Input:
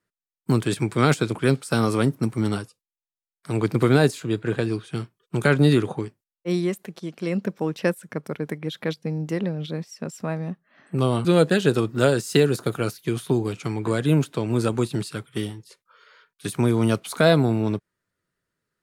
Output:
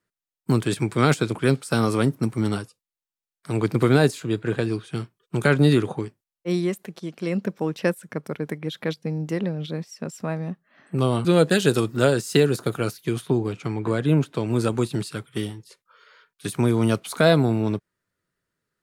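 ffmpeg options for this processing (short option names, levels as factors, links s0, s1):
-filter_complex "[0:a]asettb=1/sr,asplit=3[s0][s1][s2];[s0]atrim=end=11.504[s3];[s1]atrim=start=11.5:end=11.97,asetpts=PTS-STARTPTS,afade=t=in:d=0.004:c=qsin,afade=t=out:st=0.466:d=0.004:c=qsin,highshelf=f=4500:g=9[s4];[s2]atrim=start=11.966[s5];[s3][s4]acrossfade=d=0.004:c1=hsin:c2=qsin[s6];[s6][s5]acrossfade=d=0.004:c1=qsin:c2=hsin,asettb=1/sr,asplit=3[s7][s8][s9];[s7]atrim=end=13.214[s10];[s8]atrim=start=13.21:end=14.35,asetpts=PTS-STARTPTS,afade=t=in:d=0.004:c=qsin,afade=t=out:st=1.136:d=0.004:c=qsin,highshelf=f=4600:g=-9.5[s11];[s9]atrim=start=14.346[s12];[s10][s11]acrossfade=d=0.004:c1=hsin:c2=qsin[s13];[s13][s12]acrossfade=d=0.004:c1=qsin:c2=hsin"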